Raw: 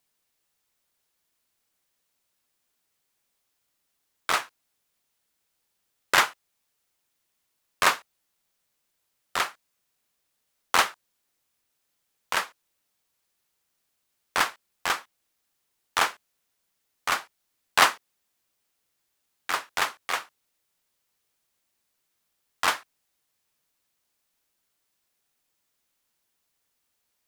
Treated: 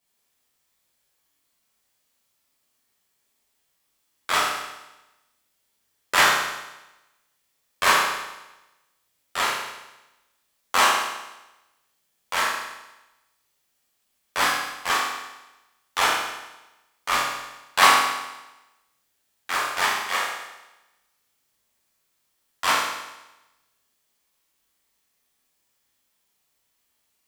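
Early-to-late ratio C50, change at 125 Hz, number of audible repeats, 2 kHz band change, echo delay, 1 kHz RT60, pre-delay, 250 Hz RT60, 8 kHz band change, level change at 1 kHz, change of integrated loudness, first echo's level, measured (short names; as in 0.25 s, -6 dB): 0.0 dB, +4.0 dB, none, +4.5 dB, none, 1.0 s, 10 ms, 1.0 s, +4.5 dB, +5.5 dB, +3.5 dB, none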